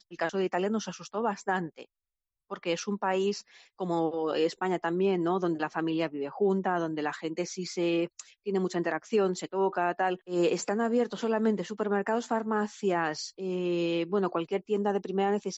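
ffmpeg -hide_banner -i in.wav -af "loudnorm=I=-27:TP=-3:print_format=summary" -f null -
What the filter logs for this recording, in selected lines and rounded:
Input Integrated:    -30.0 LUFS
Input True Peak:     -16.5 dBTP
Input LRA:             2.4 LU
Input Threshold:     -40.1 LUFS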